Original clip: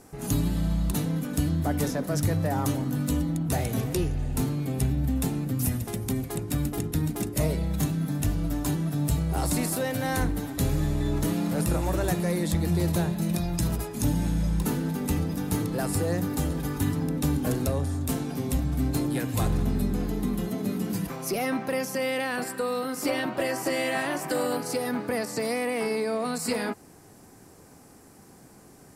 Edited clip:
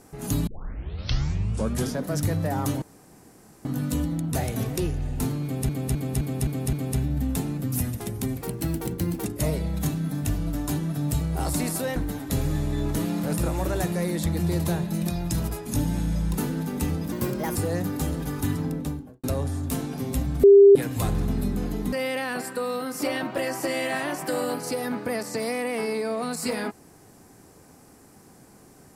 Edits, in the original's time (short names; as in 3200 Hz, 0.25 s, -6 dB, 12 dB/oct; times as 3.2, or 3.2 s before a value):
0.47 tape start 1.56 s
2.82 insert room tone 0.83 s
4.6–4.86 loop, 6 plays
6.28–7.21 speed 112%
9.93–10.24 cut
15.4–15.93 speed 122%
16.99–17.61 studio fade out
18.81–19.13 bleep 399 Hz -8 dBFS
20.3–21.95 cut